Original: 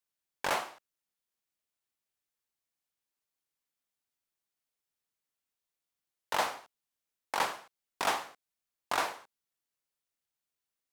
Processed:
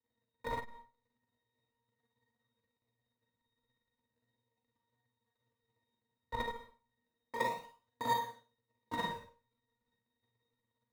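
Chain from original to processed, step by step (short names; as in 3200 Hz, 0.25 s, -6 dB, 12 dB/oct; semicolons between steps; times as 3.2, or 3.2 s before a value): crackle 140/s -56 dBFS; octave resonator A#, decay 0.2 s; tremolo 17 Hz, depth 53%; in parallel at -6.5 dB: decimation with a swept rate 32×, swing 100% 0.34 Hz; on the sum: Schroeder reverb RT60 0.35 s, combs from 33 ms, DRR 2.5 dB; core saturation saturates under 250 Hz; gain +10.5 dB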